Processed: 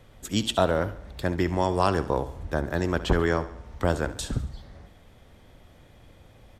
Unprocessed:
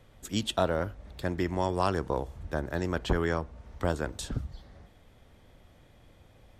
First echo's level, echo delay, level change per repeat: −15.0 dB, 69 ms, −6.0 dB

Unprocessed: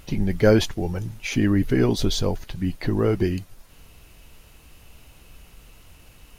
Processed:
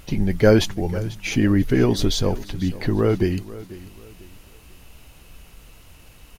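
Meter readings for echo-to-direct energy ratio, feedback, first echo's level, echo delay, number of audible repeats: −17.0 dB, 33%, −17.5 dB, 493 ms, 2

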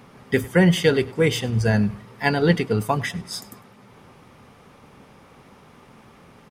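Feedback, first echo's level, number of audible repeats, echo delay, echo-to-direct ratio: 34%, −21.5 dB, 2, 102 ms, −21.0 dB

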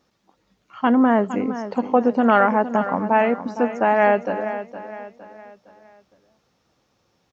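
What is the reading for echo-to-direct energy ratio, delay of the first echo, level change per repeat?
−11.0 dB, 462 ms, −7.5 dB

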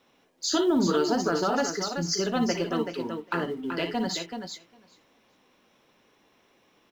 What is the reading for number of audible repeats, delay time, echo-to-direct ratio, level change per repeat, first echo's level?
4, 58 ms, −4.5 dB, repeats not evenly spaced, −8.0 dB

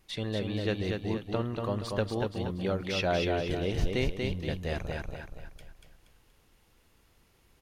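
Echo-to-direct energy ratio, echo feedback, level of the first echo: −3.0 dB, 40%, −4.0 dB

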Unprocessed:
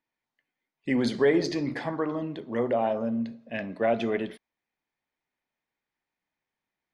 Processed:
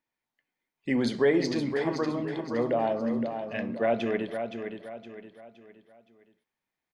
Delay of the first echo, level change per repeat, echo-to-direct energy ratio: 517 ms, −8.0 dB, −7.0 dB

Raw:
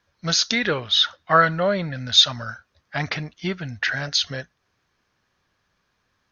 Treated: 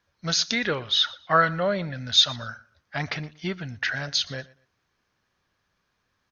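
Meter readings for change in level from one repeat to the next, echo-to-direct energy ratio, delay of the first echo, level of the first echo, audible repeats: −12.0 dB, −21.0 dB, 119 ms, −21.5 dB, 2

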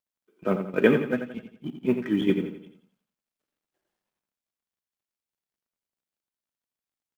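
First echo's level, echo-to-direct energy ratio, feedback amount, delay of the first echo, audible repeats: −8.5 dB, −7.5 dB, 42%, 86 ms, 4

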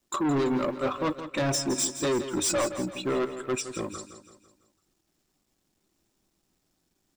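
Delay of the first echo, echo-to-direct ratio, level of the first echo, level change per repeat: 167 ms, −10.0 dB, −11.0 dB, −6.5 dB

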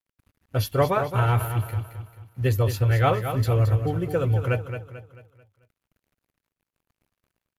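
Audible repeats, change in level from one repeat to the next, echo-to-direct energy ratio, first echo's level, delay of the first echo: 4, −7.5 dB, −8.0 dB, −9.0 dB, 220 ms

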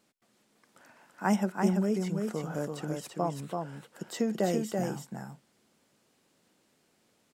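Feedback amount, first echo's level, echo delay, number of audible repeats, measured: repeats not evenly spaced, −4.0 dB, 334 ms, 1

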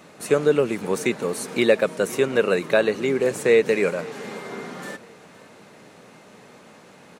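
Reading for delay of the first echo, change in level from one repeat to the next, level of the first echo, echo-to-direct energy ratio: 513 ms, −8.0 dB, −21.0 dB, −20.5 dB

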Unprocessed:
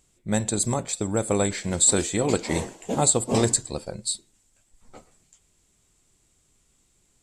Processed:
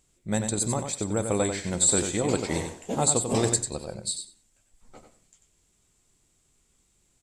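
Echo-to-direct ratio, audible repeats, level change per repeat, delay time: −7.0 dB, 2, −16.0 dB, 93 ms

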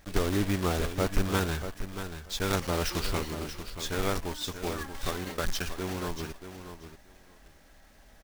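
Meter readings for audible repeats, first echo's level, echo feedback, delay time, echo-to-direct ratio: 2, −10.0 dB, 15%, 634 ms, −10.0 dB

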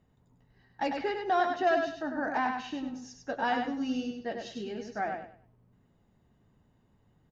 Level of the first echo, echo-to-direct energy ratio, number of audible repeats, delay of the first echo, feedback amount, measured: −5.0 dB, −4.5 dB, 3, 99 ms, 27%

